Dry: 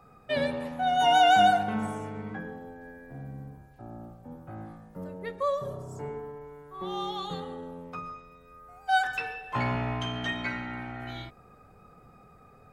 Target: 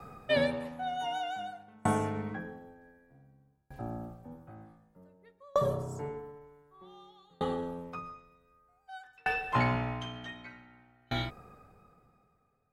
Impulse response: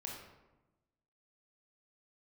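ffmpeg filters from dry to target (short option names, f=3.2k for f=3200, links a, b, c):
-af "aeval=exprs='val(0)*pow(10,-37*if(lt(mod(0.54*n/s,1),2*abs(0.54)/1000),1-mod(0.54*n/s,1)/(2*abs(0.54)/1000),(mod(0.54*n/s,1)-2*abs(0.54)/1000)/(1-2*abs(0.54)/1000))/20)':c=same,volume=8.5dB"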